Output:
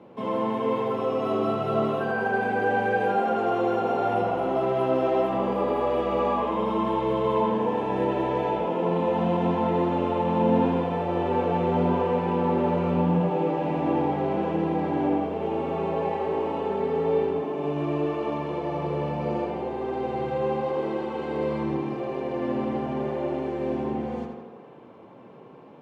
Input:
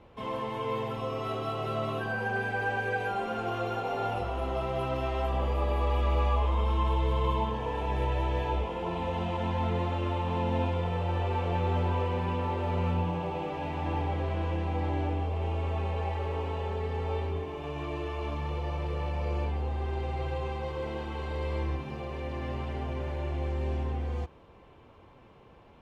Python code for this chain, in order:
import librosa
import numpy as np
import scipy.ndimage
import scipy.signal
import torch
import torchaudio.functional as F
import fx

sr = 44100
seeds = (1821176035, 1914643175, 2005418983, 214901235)

y = scipy.signal.sosfilt(scipy.signal.butter(4, 160.0, 'highpass', fs=sr, output='sos'), x)
y = fx.tilt_shelf(y, sr, db=6.5, hz=970.0)
y = fx.echo_tape(y, sr, ms=81, feedback_pct=71, wet_db=-4.0, lp_hz=3800.0, drive_db=21.0, wow_cents=14)
y = y * librosa.db_to_amplitude(4.0)